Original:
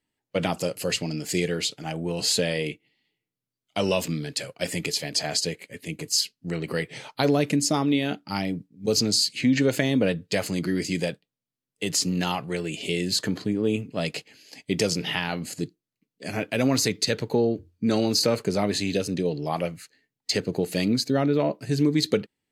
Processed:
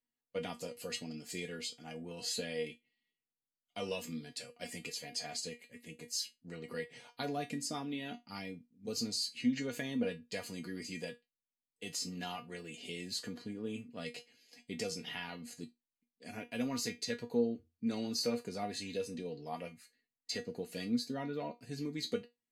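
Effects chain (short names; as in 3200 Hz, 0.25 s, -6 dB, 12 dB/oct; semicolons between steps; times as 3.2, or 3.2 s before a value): resonator 240 Hz, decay 0.18 s, harmonics all, mix 90%; gain -4 dB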